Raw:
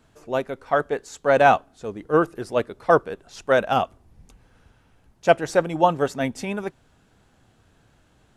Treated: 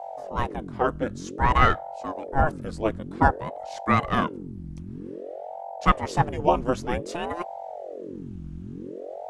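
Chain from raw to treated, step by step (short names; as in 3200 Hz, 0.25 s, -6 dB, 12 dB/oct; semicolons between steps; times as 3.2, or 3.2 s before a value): hum 50 Hz, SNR 10 dB; varispeed -10%; ring modulator with a swept carrier 420 Hz, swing 75%, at 0.53 Hz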